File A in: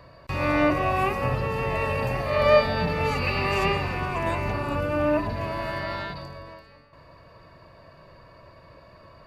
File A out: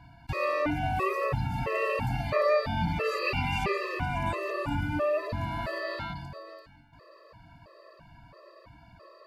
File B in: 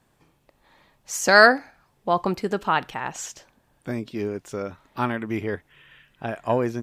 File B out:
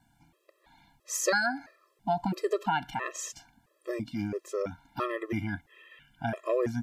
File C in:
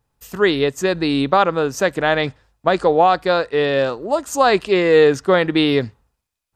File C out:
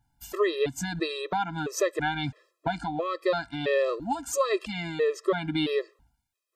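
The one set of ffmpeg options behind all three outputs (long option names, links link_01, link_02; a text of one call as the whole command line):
ffmpeg -i in.wav -af "acompressor=threshold=-20dB:ratio=10,afftfilt=real='re*gt(sin(2*PI*1.5*pts/sr)*(1-2*mod(floor(b*sr/1024/340),2)),0)':imag='im*gt(sin(2*PI*1.5*pts/sr)*(1-2*mod(floor(b*sr/1024/340),2)),0)':win_size=1024:overlap=0.75" out.wav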